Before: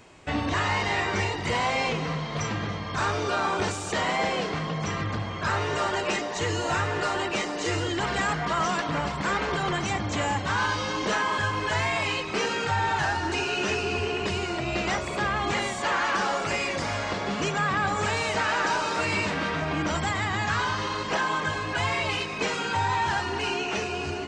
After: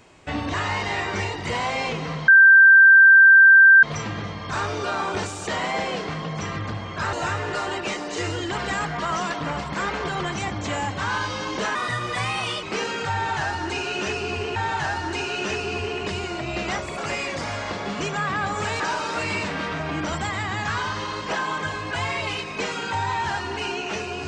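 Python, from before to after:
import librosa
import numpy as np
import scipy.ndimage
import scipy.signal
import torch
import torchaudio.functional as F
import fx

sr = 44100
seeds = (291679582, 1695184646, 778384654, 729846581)

y = fx.edit(x, sr, fx.insert_tone(at_s=2.28, length_s=1.55, hz=1570.0, db=-7.5),
    fx.cut(start_s=5.58, length_s=1.03),
    fx.speed_span(start_s=11.23, length_s=1.02, speed=1.16),
    fx.repeat(start_s=12.75, length_s=1.43, count=2),
    fx.cut(start_s=15.17, length_s=1.22),
    fx.cut(start_s=18.21, length_s=0.41), tone=tone)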